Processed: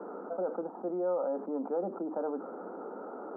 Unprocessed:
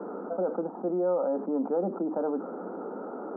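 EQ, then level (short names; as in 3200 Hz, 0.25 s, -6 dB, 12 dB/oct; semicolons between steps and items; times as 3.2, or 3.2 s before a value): HPF 360 Hz 6 dB/oct; -2.5 dB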